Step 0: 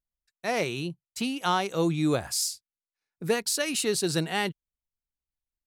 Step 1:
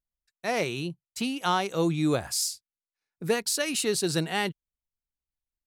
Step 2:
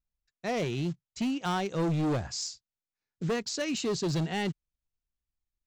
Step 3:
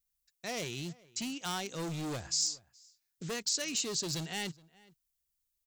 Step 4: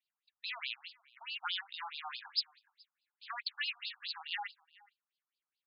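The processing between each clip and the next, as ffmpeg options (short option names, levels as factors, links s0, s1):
-af anull
-af "lowshelf=f=340:g=11,aresample=16000,acrusher=bits=6:mode=log:mix=0:aa=0.000001,aresample=44100,volume=10.6,asoftclip=hard,volume=0.0944,volume=0.562"
-filter_complex "[0:a]alimiter=level_in=1.88:limit=0.0631:level=0:latency=1:release=431,volume=0.531,crystalizer=i=6:c=0,asplit=2[s0][s1];[s1]adelay=419.8,volume=0.0708,highshelf=f=4000:g=-9.45[s2];[s0][s2]amix=inputs=2:normalize=0,volume=0.501"
-af "afftfilt=real='re*between(b*sr/1024,970*pow(3700/970,0.5+0.5*sin(2*PI*4.7*pts/sr))/1.41,970*pow(3700/970,0.5+0.5*sin(2*PI*4.7*pts/sr))*1.41)':imag='im*between(b*sr/1024,970*pow(3700/970,0.5+0.5*sin(2*PI*4.7*pts/sr))/1.41,970*pow(3700/970,0.5+0.5*sin(2*PI*4.7*pts/sr))*1.41)':win_size=1024:overlap=0.75,volume=2.11"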